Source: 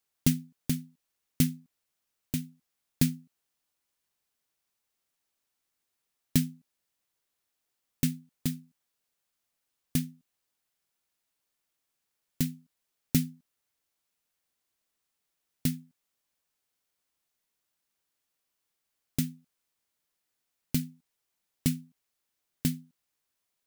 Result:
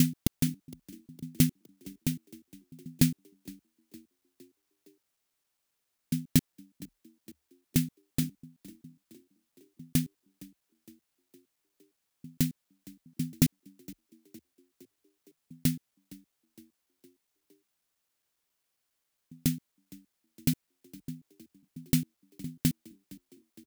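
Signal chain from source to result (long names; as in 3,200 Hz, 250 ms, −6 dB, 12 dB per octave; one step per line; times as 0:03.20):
slices reordered back to front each 136 ms, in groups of 3
echo with shifted repeats 462 ms, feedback 56%, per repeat +36 Hz, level −22 dB
level +1.5 dB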